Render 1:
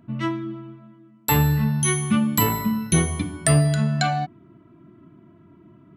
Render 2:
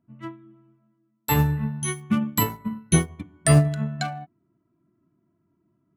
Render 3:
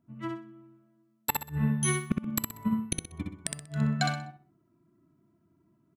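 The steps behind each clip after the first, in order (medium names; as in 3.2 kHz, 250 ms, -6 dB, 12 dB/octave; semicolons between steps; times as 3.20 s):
local Wiener filter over 9 samples; upward expansion 2.5:1, over -29 dBFS; trim +2.5 dB
inverted gate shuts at -13 dBFS, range -31 dB; on a send: feedback delay 63 ms, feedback 30%, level -3.5 dB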